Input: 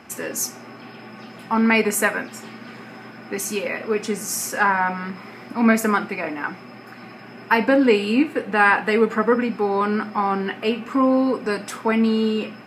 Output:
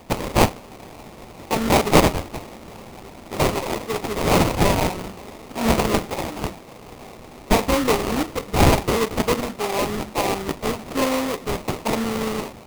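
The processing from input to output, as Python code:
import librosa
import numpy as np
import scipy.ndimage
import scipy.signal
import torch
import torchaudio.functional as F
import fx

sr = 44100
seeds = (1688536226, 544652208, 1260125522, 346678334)

y = fx.tilt_eq(x, sr, slope=3.5)
y = fx.sample_hold(y, sr, seeds[0], rate_hz=1600.0, jitter_pct=20)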